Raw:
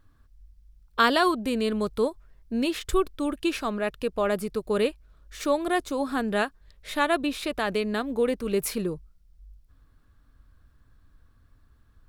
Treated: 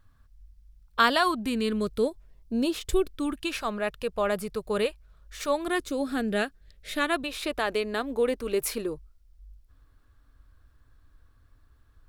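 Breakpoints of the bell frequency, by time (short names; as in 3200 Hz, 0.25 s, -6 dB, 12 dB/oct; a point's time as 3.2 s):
bell -12.5 dB 0.55 oct
1.06 s 340 Hz
2.69 s 2200 Hz
3.61 s 290 Hz
5.42 s 290 Hz
5.95 s 1000 Hz
6.97 s 1000 Hz
7.4 s 180 Hz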